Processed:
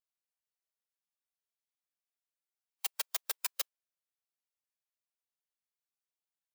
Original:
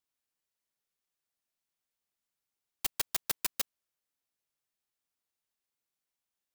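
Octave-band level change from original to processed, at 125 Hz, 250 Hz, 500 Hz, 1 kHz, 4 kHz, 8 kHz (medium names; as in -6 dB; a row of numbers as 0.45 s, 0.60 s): under -40 dB, under -15 dB, -4.0 dB, -2.0 dB, -2.0 dB, -2.5 dB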